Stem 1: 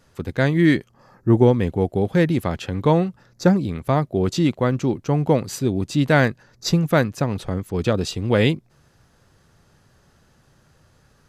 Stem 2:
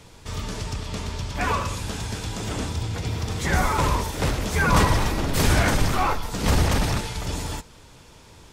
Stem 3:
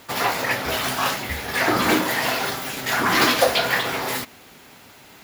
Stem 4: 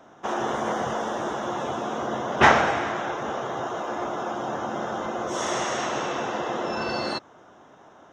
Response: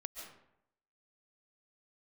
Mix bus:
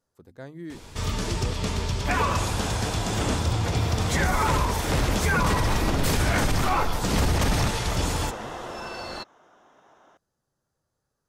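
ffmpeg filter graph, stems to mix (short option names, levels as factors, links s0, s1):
-filter_complex "[0:a]equalizer=f=2500:w=0.88:g=-13,bandreject=f=50:t=h:w=6,bandreject=f=100:t=h:w=6,bandreject=f=150:t=h:w=6,bandreject=f=200:t=h:w=6,bandreject=f=250:t=h:w=6,volume=0.158[s0];[1:a]adelay=700,volume=1.41[s1];[3:a]adelay=2050,volume=0.631[s2];[s0][s2]amix=inputs=2:normalize=0,lowshelf=f=350:g=-8.5,acompressor=threshold=0.0282:ratio=6,volume=1[s3];[s1][s3]amix=inputs=2:normalize=0,alimiter=limit=0.211:level=0:latency=1:release=99"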